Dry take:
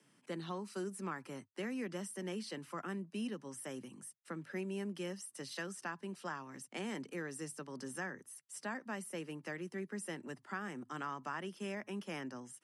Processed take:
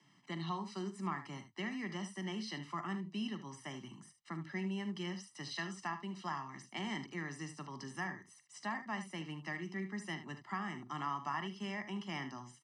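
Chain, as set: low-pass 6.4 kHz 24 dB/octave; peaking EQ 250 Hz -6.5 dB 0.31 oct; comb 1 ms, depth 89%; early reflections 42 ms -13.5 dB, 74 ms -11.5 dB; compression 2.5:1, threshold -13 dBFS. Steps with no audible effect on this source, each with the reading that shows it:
compression, threshold -13 dBFS: peak at its input -25.5 dBFS

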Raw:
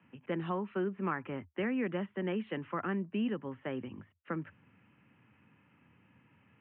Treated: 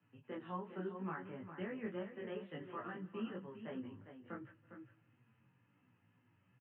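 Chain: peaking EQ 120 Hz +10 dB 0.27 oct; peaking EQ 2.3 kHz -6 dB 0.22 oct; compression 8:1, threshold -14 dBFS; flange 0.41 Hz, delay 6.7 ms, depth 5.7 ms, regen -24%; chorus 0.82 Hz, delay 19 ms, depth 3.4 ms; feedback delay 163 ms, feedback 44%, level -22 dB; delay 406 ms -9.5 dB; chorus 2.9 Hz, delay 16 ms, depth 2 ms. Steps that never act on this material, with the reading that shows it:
compression, threshold -14 dBFS: peak at its input -20.5 dBFS

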